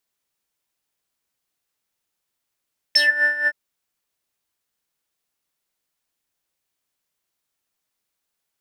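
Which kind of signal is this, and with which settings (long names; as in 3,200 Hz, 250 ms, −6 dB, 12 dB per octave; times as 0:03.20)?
subtractive patch with tremolo D5, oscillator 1 triangle, oscillator 2 square, interval +19 semitones, detune 14 cents, oscillator 2 level −3 dB, sub −11 dB, noise −23 dB, filter bandpass, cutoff 1,400 Hz, Q 7.5, filter envelope 2 octaves, filter decay 0.16 s, filter sustain 5%, attack 9.5 ms, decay 0.19 s, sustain −11 dB, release 0.05 s, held 0.52 s, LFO 4.2 Hz, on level 11.5 dB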